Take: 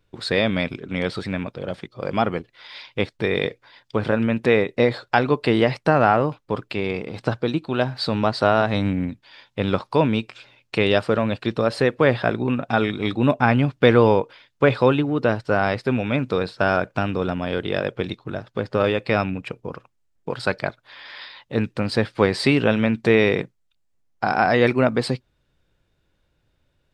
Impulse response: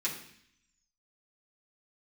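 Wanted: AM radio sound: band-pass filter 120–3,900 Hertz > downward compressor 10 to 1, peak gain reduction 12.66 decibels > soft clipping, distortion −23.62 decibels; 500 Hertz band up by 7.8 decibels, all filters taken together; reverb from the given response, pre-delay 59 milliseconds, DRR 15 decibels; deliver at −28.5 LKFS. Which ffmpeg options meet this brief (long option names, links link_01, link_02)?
-filter_complex "[0:a]equalizer=frequency=500:width_type=o:gain=9,asplit=2[link_01][link_02];[1:a]atrim=start_sample=2205,adelay=59[link_03];[link_02][link_03]afir=irnorm=-1:irlink=0,volume=-20dB[link_04];[link_01][link_04]amix=inputs=2:normalize=0,highpass=120,lowpass=3900,acompressor=threshold=-15dB:ratio=10,asoftclip=threshold=-7dB,volume=-5.5dB"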